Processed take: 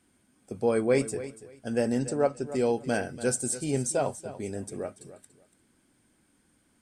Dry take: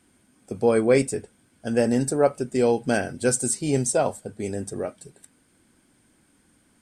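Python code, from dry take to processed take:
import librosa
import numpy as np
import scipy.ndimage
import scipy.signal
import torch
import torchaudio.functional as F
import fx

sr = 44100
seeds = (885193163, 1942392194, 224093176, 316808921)

y = fx.steep_lowpass(x, sr, hz=8200.0, slope=36, at=(1.99, 2.47))
y = fx.echo_feedback(y, sr, ms=287, feedback_pct=21, wet_db=-14.5)
y = y * 10.0 ** (-5.5 / 20.0)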